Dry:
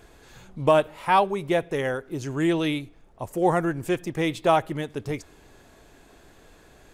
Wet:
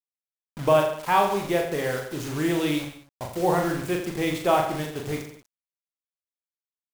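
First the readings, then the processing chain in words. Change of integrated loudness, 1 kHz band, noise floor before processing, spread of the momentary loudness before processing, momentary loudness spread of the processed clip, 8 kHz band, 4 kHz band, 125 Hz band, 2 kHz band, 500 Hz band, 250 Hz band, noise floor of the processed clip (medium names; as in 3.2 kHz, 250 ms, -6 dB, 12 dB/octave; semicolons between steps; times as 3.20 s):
0.0 dB, -0.5 dB, -54 dBFS, 12 LU, 11 LU, +5.5 dB, +1.0 dB, -0.5 dB, 0.0 dB, 0.0 dB, -0.5 dB, under -85 dBFS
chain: bit crusher 6-bit; reverse bouncing-ball echo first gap 40 ms, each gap 1.1×, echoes 5; trim -2.5 dB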